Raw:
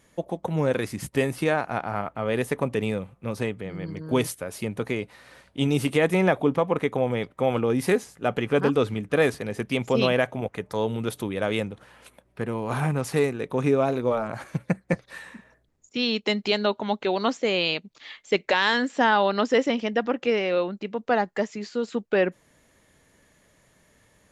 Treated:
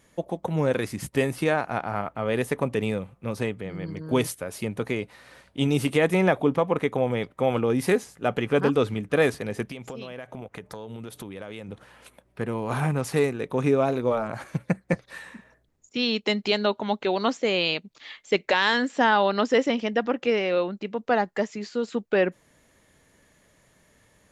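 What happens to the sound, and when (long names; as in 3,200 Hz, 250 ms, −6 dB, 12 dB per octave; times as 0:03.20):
0:09.70–0:11.69: downward compressor 12 to 1, threshold −33 dBFS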